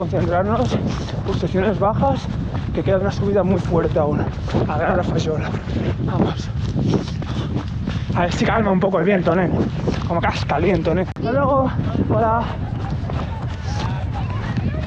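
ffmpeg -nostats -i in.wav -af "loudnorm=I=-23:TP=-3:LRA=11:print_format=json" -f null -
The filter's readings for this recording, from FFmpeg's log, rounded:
"input_i" : "-20.5",
"input_tp" : "-3.8",
"input_lra" : "3.4",
"input_thresh" : "-30.5",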